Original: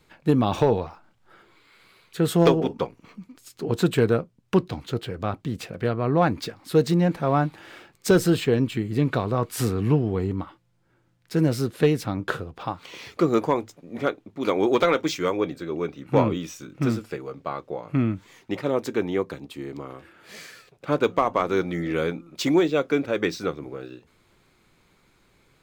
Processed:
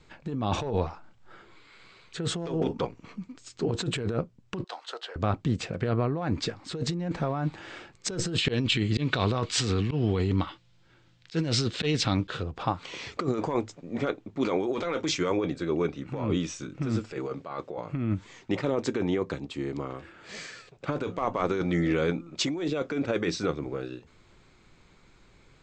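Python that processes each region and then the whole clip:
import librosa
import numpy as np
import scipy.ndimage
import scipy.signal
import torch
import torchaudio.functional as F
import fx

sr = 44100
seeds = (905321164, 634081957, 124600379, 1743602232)

y = fx.chain(x, sr, fx.highpass(hz=640.0, slope=24),
    fx.peak_eq(hz=2300.0, db=-9.5, octaves=0.27),
    fx.resample_bad(factor=3, down='filtered', up='hold'), at=(4.64, 5.16))
y = fx.chain(y, sr, fx.peak_eq(hz=3600.0, db=13.0, octaves=1.7),
    fx.auto_swell(attack_ms=187.0), at=(8.38, 12.43))
y = fx.chain(y, sr, fx.highpass(hz=170.0, slope=6),
    fx.over_compress(threshold_db=-36.0, ratio=-1.0), at=(17.12, 17.78))
y = scipy.signal.sosfilt(scipy.signal.butter(16, 8200.0, 'lowpass', fs=sr, output='sos'), y)
y = fx.low_shelf(y, sr, hz=82.0, db=7.5)
y = fx.over_compress(y, sr, threshold_db=-25.0, ratio=-1.0)
y = F.gain(torch.from_numpy(y), -2.0).numpy()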